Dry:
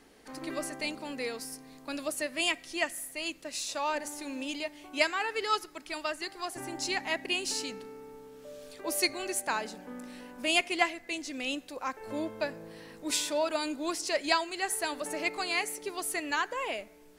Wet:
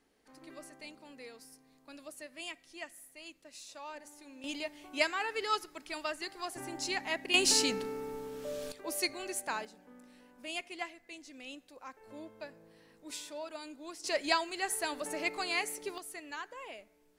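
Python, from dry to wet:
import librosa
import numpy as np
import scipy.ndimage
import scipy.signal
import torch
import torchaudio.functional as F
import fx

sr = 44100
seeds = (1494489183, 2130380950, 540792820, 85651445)

y = fx.gain(x, sr, db=fx.steps((0.0, -14.0), (4.44, -3.0), (7.34, 7.0), (8.72, -5.0), (9.65, -13.0), (14.04, -2.5), (15.98, -12.0)))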